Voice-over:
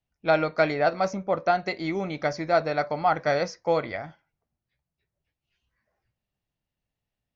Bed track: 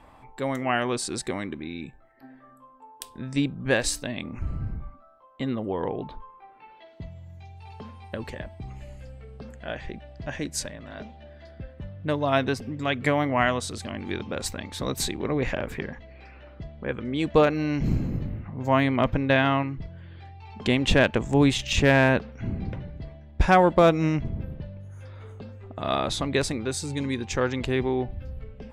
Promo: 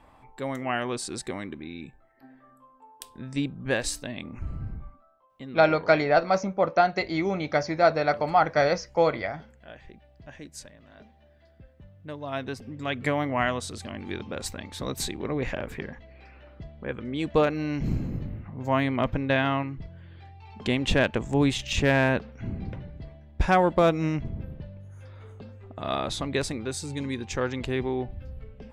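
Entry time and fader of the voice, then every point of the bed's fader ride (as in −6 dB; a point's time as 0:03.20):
5.30 s, +2.0 dB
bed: 0:04.86 −3.5 dB
0:05.50 −12 dB
0:12.12 −12 dB
0:12.97 −3 dB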